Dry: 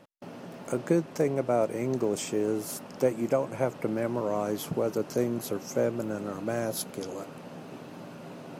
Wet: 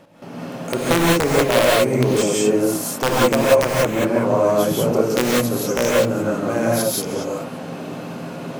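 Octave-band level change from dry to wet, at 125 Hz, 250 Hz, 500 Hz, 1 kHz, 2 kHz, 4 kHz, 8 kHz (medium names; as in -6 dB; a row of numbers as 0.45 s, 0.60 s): +12.0 dB, +10.5 dB, +11.0 dB, +14.0 dB, +18.0 dB, +18.5 dB, +14.5 dB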